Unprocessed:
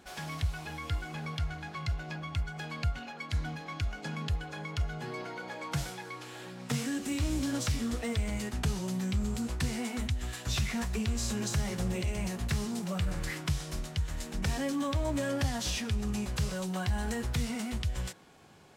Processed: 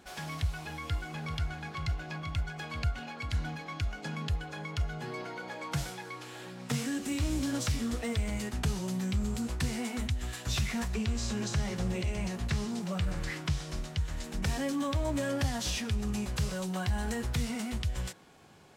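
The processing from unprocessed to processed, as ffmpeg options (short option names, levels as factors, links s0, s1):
-filter_complex "[0:a]asettb=1/sr,asplit=3[s0][s1][s2];[s0]atrim=end=0.894[s3];[s1]atrim=start=0.89:end=3.63,asetpts=PTS-STARTPTS,afade=t=in:d=0.004:c=qsin,afade=t=out:st=2.736:d=0.004:c=qsin,aecho=1:1:389:0.335,atrim=end_sample=120834[s4];[s2]atrim=start=3.626[s5];[s3][s4]acrossfade=d=0.004:c1=hsin:c2=qsin[s6];[s6][s5]acrossfade=d=0.004:c1=qsin:c2=hsin,asettb=1/sr,asplit=3[s7][s8][s9];[s7]atrim=end=10.884[s10];[s8]atrim=start=10.88:end=14.24,asetpts=PTS-STARTPTS,afade=t=in:d=0.004:c=qsin,afade=t=out:st=3.356:d=0.004:c=qsin,acrossover=split=7400[s11][s12];[s12]acompressor=threshold=0.00112:ratio=4:attack=1:release=60[s13];[s11][s13]amix=inputs=2:normalize=0[s14];[s9]atrim=start=14.236[s15];[s10][s14]acrossfade=d=0.004:c1=hsin:c2=qsin[s16];[s16][s15]acrossfade=d=0.004:c1=qsin:c2=hsin"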